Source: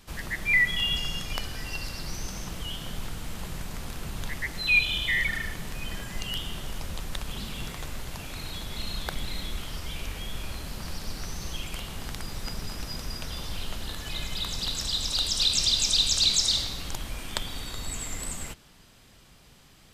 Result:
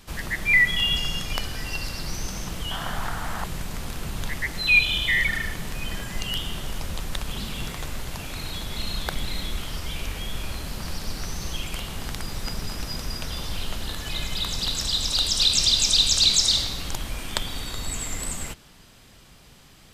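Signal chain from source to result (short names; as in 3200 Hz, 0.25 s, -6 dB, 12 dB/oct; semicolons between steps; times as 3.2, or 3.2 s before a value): 2.71–3.44 band shelf 1100 Hz +11 dB; gain +4 dB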